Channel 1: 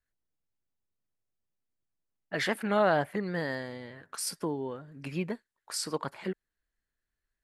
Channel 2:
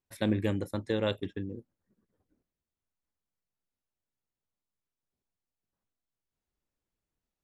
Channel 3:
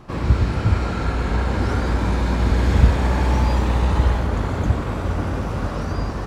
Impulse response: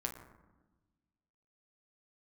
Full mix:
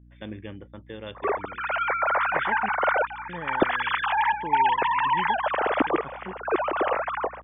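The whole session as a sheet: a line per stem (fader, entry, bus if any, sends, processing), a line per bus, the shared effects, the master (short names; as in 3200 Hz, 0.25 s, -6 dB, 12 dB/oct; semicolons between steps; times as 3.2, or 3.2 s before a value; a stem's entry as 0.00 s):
-4.5 dB, 0.00 s, muted 2.69–3.29, no send, dry
-6.5 dB, 0.00 s, no send, tilt shelf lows -3.5 dB, about 1400 Hz
-5.5 dB, 1.15 s, no send, sine-wave speech; step gate "x.xxxxxxx..xxx" 71 bpm -12 dB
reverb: off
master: hum 60 Hz, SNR 26 dB; brick-wall FIR low-pass 3600 Hz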